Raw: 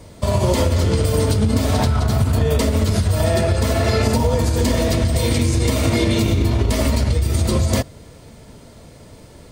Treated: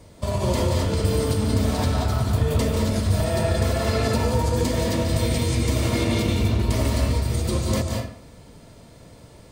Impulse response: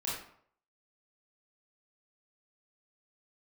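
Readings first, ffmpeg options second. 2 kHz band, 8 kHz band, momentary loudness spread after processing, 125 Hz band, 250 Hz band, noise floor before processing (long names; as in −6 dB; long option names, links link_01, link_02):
−4.0 dB, −5.0 dB, 2 LU, −4.5 dB, −4.0 dB, −43 dBFS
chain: -filter_complex "[0:a]asplit=2[link_01][link_02];[1:a]atrim=start_sample=2205,adelay=146[link_03];[link_02][link_03]afir=irnorm=-1:irlink=0,volume=-5dB[link_04];[link_01][link_04]amix=inputs=2:normalize=0,volume=-6.5dB"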